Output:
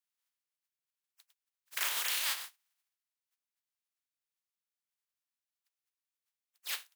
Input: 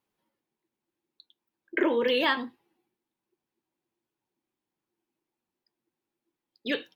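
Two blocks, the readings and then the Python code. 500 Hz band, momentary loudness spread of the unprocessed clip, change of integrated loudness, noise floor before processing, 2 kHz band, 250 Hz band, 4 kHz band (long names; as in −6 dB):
−30.5 dB, 14 LU, −6.5 dB, below −85 dBFS, −8.5 dB, below −35 dB, −3.5 dB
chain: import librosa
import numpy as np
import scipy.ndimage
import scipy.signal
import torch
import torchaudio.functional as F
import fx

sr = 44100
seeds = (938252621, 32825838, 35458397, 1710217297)

y = fx.spec_flatten(x, sr, power=0.17)
y = scipy.signal.sosfilt(scipy.signal.butter(2, 1200.0, 'highpass', fs=sr, output='sos'), y)
y = y * 10.0 ** (-7.5 / 20.0)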